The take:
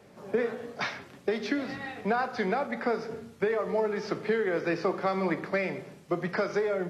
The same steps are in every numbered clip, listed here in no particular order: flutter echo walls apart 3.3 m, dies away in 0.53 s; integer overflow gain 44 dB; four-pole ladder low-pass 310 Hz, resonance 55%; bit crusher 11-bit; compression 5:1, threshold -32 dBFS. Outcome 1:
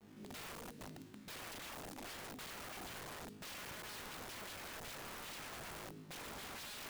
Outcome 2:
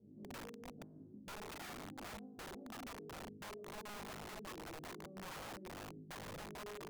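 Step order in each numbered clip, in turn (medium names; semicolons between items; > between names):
four-pole ladder low-pass > bit crusher > compression > flutter echo > integer overflow; flutter echo > bit crusher > compression > four-pole ladder low-pass > integer overflow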